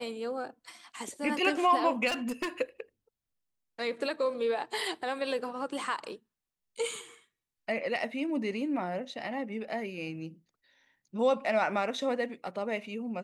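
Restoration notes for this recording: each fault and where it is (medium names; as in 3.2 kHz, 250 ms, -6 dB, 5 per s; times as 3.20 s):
2.07–2.49 s: clipped -28 dBFS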